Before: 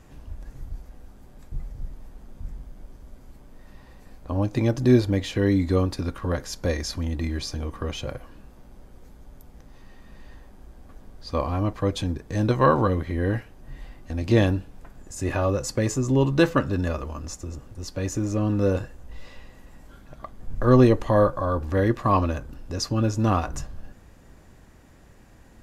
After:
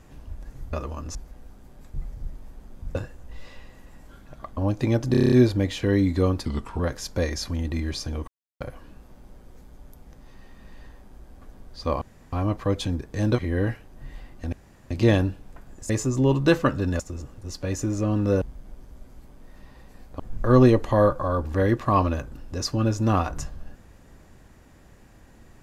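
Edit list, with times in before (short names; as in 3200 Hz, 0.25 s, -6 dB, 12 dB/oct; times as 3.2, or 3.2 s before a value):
2.53–4.31 swap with 18.75–20.37
4.85 stutter 0.03 s, 8 plays
5.98–6.27 speed 84%
7.75–8.08 mute
11.49 insert room tone 0.31 s
12.55–13.05 cut
14.19 insert room tone 0.38 s
15.18–15.81 cut
16.91–17.33 move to 0.73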